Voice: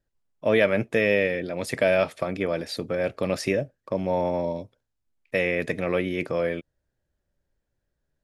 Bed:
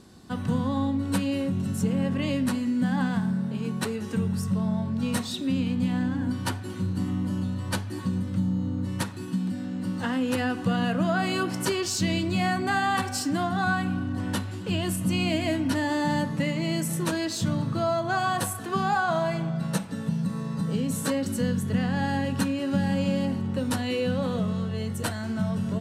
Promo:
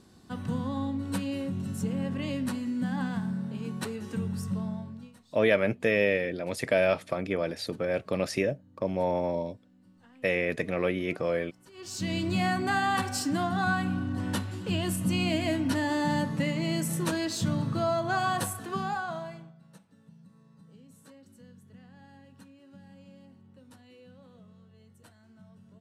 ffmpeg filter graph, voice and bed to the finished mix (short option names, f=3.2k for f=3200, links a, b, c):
-filter_complex "[0:a]adelay=4900,volume=-3dB[a];[1:a]volume=22dB,afade=t=out:st=4.56:d=0.57:silence=0.0630957,afade=t=in:st=11.72:d=0.57:silence=0.0421697,afade=t=out:st=18.31:d=1.24:silence=0.0562341[b];[a][b]amix=inputs=2:normalize=0"